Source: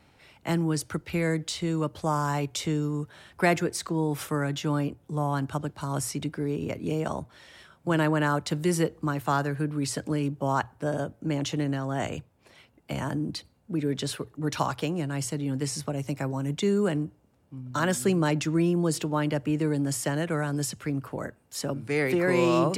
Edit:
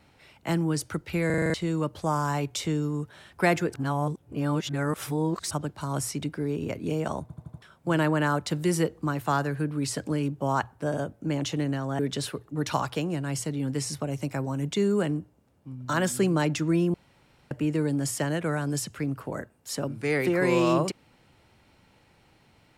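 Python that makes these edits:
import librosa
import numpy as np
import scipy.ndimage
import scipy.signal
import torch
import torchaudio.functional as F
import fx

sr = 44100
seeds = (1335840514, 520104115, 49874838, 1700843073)

y = fx.edit(x, sr, fx.stutter_over(start_s=1.26, slice_s=0.04, count=7),
    fx.reverse_span(start_s=3.74, length_s=1.77),
    fx.stutter_over(start_s=7.22, slice_s=0.08, count=5),
    fx.cut(start_s=11.99, length_s=1.86),
    fx.room_tone_fill(start_s=18.8, length_s=0.57), tone=tone)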